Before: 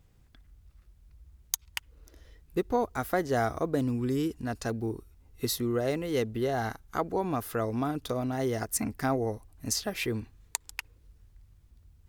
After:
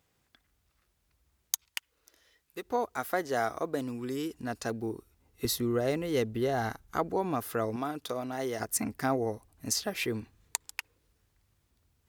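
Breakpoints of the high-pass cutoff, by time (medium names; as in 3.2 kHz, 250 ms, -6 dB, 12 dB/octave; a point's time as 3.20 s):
high-pass 6 dB/octave
580 Hz
from 1.67 s 1.5 kHz
from 2.62 s 470 Hz
from 4.33 s 210 Hz
from 5.45 s 55 Hz
from 7.14 s 140 Hz
from 7.76 s 460 Hz
from 8.60 s 150 Hz
from 10.66 s 390 Hz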